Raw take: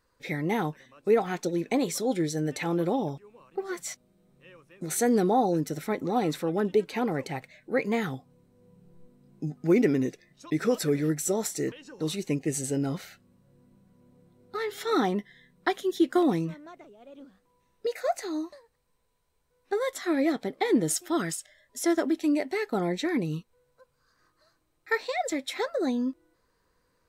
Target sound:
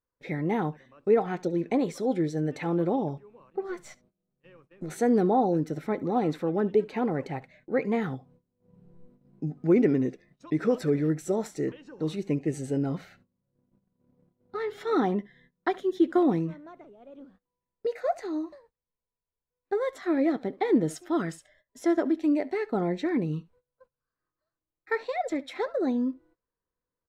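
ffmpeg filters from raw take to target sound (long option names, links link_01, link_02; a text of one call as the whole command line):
ffmpeg -i in.wav -filter_complex "[0:a]asettb=1/sr,asplit=3[link_01][link_02][link_03];[link_01]atrim=end=3.694[link_04];[link_02]atrim=start=3.69:end=4.9,asetpts=PTS-STARTPTS,afade=type=in:duration=0.004:curve=qsin,afade=type=out:start_time=1.206:duration=0.004:curve=qsin,aeval=exprs='if(lt(val(0),0),0.708*val(0),val(0))':channel_layout=same[link_05];[link_03]atrim=start=4.896[link_06];[link_04][link_05]acrossfade=duration=0.004:curve1=hsin:curve2=qsin[link_07];[link_07][link_06]acrossfade=duration=0.004:curve1=qsin:curve2=hsin,aecho=1:1:70:0.0794,agate=range=-19dB:threshold=-57dB:ratio=16:detection=peak,lowpass=frequency=1300:poles=1,volume=1dB" out.wav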